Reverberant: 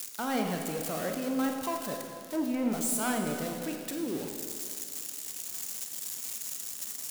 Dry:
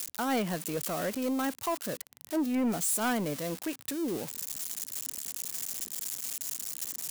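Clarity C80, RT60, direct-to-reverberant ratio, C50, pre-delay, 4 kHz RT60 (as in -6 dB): 4.5 dB, 2.3 s, 2.5 dB, 4.0 dB, 30 ms, 2.1 s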